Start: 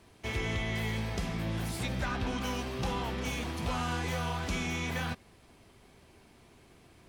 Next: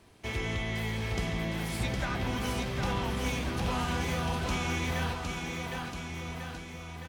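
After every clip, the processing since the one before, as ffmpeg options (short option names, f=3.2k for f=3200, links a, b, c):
-af "aecho=1:1:760|1444|2060|2614|3112:0.631|0.398|0.251|0.158|0.1"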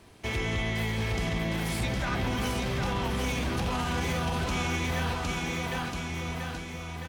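-af "alimiter=level_in=1.5dB:limit=-24dB:level=0:latency=1:release=28,volume=-1.5dB,volume=4.5dB"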